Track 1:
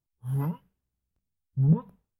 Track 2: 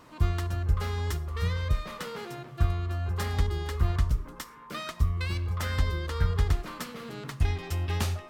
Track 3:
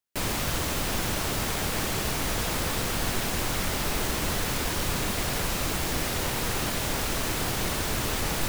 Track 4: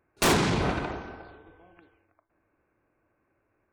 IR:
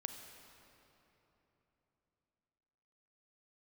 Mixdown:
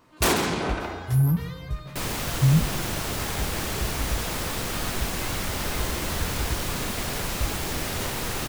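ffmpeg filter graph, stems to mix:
-filter_complex "[0:a]acompressor=threshold=-26dB:ratio=6,aexciter=amount=4.9:drive=7.6:freq=4.2k,bass=f=250:g=13,treble=f=4k:g=0,adelay=850,volume=-5dB,asplit=2[a][b];[b]volume=-3dB[c];[1:a]flanger=delay=15.5:depth=2.7:speed=0.46,volume=-2dB[d];[2:a]adelay=1800,volume=-1dB[e];[3:a]highpass=190,highshelf=f=12k:g=11,volume=0dB,asplit=2[f][g];[g]volume=-11dB[h];[4:a]atrim=start_sample=2205[i];[c][i]afir=irnorm=-1:irlink=0[j];[h]aecho=0:1:136:1[k];[a][d][e][f][j][k]amix=inputs=6:normalize=0"

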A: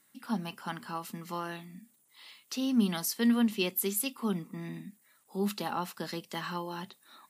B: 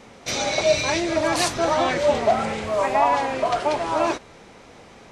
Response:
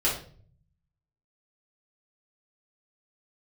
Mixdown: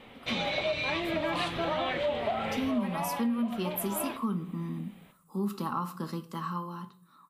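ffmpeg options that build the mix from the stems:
-filter_complex "[0:a]firequalizer=gain_entry='entry(140,0);entry(710,-14);entry(1100,4);entry(1800,-15);entry(11000,-9)':delay=0.05:min_phase=1,dynaudnorm=f=290:g=9:m=8dB,volume=-2.5dB,asplit=2[a][b];[b]volume=-18.5dB[c];[1:a]highshelf=f=4.4k:t=q:w=3:g=-9.5,volume=-7dB,afade=t=out:st=2.74:d=0.34:silence=0.398107,asplit=2[d][e];[e]volume=-20.5dB[f];[2:a]atrim=start_sample=2205[g];[c][f]amix=inputs=2:normalize=0[h];[h][g]afir=irnorm=-1:irlink=0[i];[a][d][i]amix=inputs=3:normalize=0,acompressor=threshold=-27dB:ratio=6"

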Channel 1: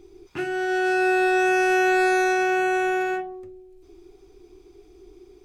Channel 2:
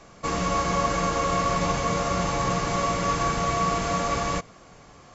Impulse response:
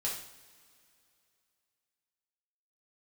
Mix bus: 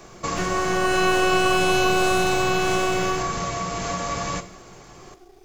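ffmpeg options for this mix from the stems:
-filter_complex "[0:a]aeval=exprs='max(val(0),0)':c=same,volume=0.5dB,asplit=2[a][b];[b]volume=-7dB[c];[1:a]acompressor=threshold=-27dB:ratio=6,volume=1dB,asplit=2[d][e];[e]volume=-10dB[f];[2:a]atrim=start_sample=2205[g];[c][f]amix=inputs=2:normalize=0[h];[h][g]afir=irnorm=-1:irlink=0[i];[a][d][i]amix=inputs=3:normalize=0,highshelf=f=7k:g=8"

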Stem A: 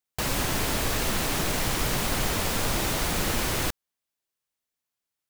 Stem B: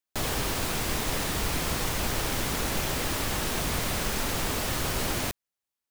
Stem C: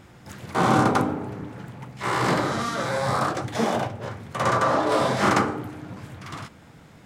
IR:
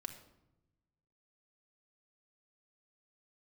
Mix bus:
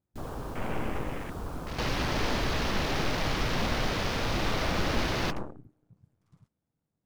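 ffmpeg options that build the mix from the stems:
-filter_complex "[0:a]highshelf=f=8.4k:g=-3.5,adelay=1600,volume=-2.5dB[a];[1:a]volume=-7.5dB,asplit=2[b][c];[c]volume=-12dB[d];[2:a]aeval=exprs='0.531*(cos(1*acos(clip(val(0)/0.531,-1,1)))-cos(1*PI/2))+0.0841*(cos(4*acos(clip(val(0)/0.531,-1,1)))-cos(4*PI/2))+0.211*(cos(8*acos(clip(val(0)/0.531,-1,1)))-cos(8*PI/2))':c=same,equalizer=f=2.2k:w=0.47:g=-11,volume=-17.5dB[e];[3:a]atrim=start_sample=2205[f];[d][f]afir=irnorm=-1:irlink=0[g];[a][b][e][g]amix=inputs=4:normalize=0,afwtdn=0.0126"

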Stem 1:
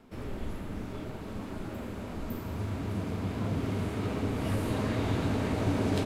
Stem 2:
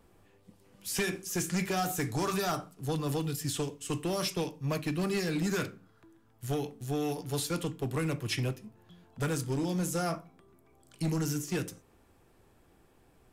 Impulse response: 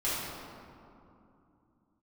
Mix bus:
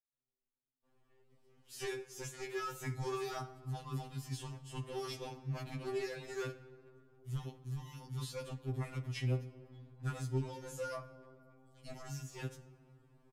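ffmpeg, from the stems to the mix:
-filter_complex "[0:a]agate=range=-56dB:threshold=-25dB:ratio=16:detection=peak,alimiter=level_in=9.5dB:limit=-24dB:level=0:latency=1:release=90,volume=-9.5dB,volume=-4dB[a];[1:a]dynaudnorm=f=200:g=3:m=4dB,adelay=850,volume=-11dB,asplit=2[b][c];[c]volume=-22dB[d];[2:a]atrim=start_sample=2205[e];[d][e]afir=irnorm=-1:irlink=0[f];[a][b][f]amix=inputs=3:normalize=0,highshelf=f=7.9k:g=-11,afftfilt=real='re*2.45*eq(mod(b,6),0)':imag='im*2.45*eq(mod(b,6),0)':win_size=2048:overlap=0.75"

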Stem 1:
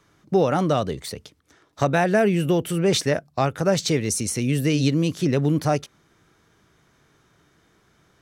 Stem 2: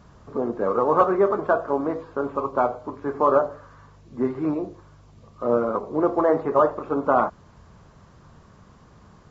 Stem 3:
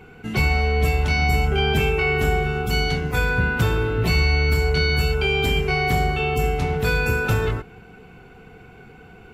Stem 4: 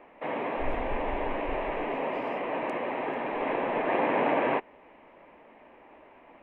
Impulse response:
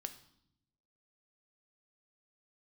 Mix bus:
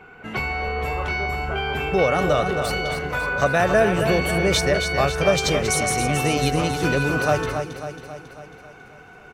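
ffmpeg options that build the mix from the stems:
-filter_complex "[0:a]lowshelf=f=190:g=-7,aecho=1:1:1.7:0.35,adelay=1600,volume=0.5dB,asplit=2[a][b];[b]volume=-7.5dB[c];[1:a]volume=-15.5dB[d];[2:a]equalizer=f=1.2k:t=o:w=2.7:g=13.5,acompressor=threshold=-14dB:ratio=6,volume=-8.5dB,asplit=2[e][f];[f]volume=-15.5dB[g];[3:a]volume=-14dB[h];[c][g]amix=inputs=2:normalize=0,aecho=0:1:273|546|819|1092|1365|1638|1911|2184|2457:1|0.58|0.336|0.195|0.113|0.0656|0.0381|0.0221|0.0128[i];[a][d][e][h][i]amix=inputs=5:normalize=0"

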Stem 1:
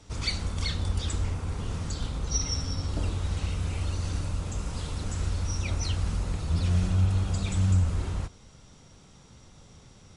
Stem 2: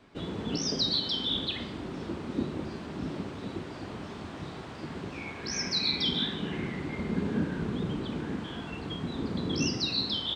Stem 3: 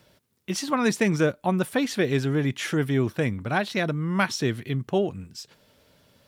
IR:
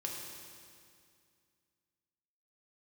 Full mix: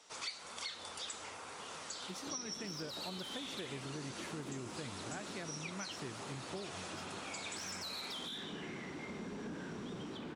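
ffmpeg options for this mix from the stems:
-filter_complex "[0:a]highpass=640,flanger=delay=3.8:depth=6.3:regen=68:speed=1.8:shape=triangular,volume=2dB[a];[1:a]highpass=f=320:p=1,alimiter=level_in=2.5dB:limit=-24dB:level=0:latency=1:release=43,volume=-2.5dB,asoftclip=type=tanh:threshold=-32.5dB,adelay=2100,volume=-5dB[b];[2:a]adelay=1600,volume=-17dB[c];[a][b][c]amix=inputs=3:normalize=0,acompressor=threshold=-40dB:ratio=6"

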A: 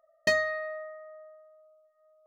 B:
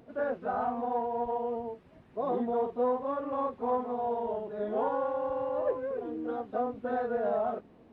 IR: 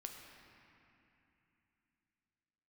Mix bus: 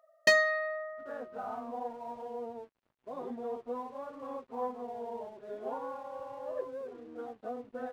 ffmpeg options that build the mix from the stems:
-filter_complex "[0:a]highpass=f=460:p=1,volume=2.5dB[a];[1:a]lowshelf=f=100:g=-11,flanger=delay=7.4:depth=1.6:regen=-5:speed=0.85:shape=triangular,aeval=exprs='sgn(val(0))*max(abs(val(0))-0.00126,0)':c=same,adelay=900,volume=-4.5dB[b];[a][b]amix=inputs=2:normalize=0"

